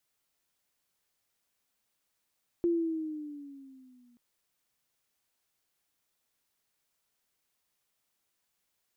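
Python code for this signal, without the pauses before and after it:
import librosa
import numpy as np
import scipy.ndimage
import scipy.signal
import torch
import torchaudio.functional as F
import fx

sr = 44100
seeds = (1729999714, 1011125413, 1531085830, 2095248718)

y = fx.riser_tone(sr, length_s=1.53, level_db=-23.0, wave='sine', hz=346.0, rise_st=-6.5, swell_db=-37.0)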